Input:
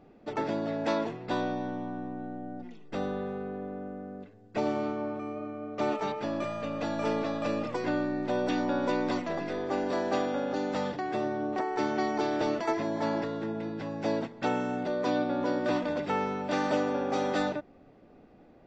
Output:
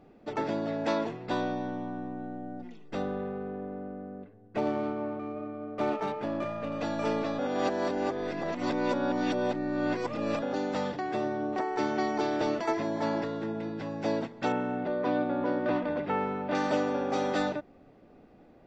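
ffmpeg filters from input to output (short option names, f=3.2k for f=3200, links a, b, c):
-filter_complex "[0:a]asettb=1/sr,asplit=3[a][b][c];[a]atrim=end=3.024[d];[b]atrim=start=3.02:end=6.72,asetpts=PTS-STARTPTS,afade=t=in:d=0.004:c=qsin,afade=t=out:st=3.696:d=0.004:c=qsin,adynamicsmooth=sensitivity=5.5:basefreq=2.2k[e];[c]atrim=start=6.716[f];[d][e]acrossfade=d=0.004:c1=hsin:c2=qsin[g];[g][f]acrossfade=d=0.004:c1=qsin:c2=hsin,asettb=1/sr,asplit=3[h][i][j];[h]atrim=end=14.524[k];[i]atrim=start=14.52:end=16.55,asetpts=PTS-STARTPTS,afade=t=in:d=0.004:c=qsin,afade=t=out:st=2.026:d=0.004:c=qsin,lowpass=2.6k[l];[j]atrim=start=16.546[m];[k][l]acrossfade=d=0.004:c1=hsin:c2=qsin[n];[n][m]acrossfade=d=0.004:c1=qsin:c2=hsin,asplit=3[o][p][q];[o]atrim=end=7.392[r];[p]atrim=start=7.388:end=10.422,asetpts=PTS-STARTPTS,areverse[s];[q]atrim=start=10.418[t];[r][s]acrossfade=d=0.004:c1=hsin:c2=hsin[u];[u][t]acrossfade=d=0.004:c1=hsin:c2=hsin"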